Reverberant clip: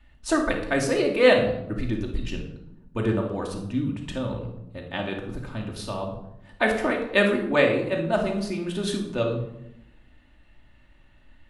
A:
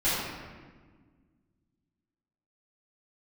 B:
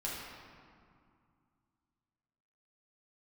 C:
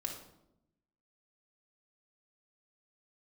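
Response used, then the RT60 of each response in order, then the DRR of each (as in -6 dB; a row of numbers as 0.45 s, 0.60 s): C; 1.5 s, 2.3 s, 0.85 s; -13.0 dB, -6.5 dB, 0.0 dB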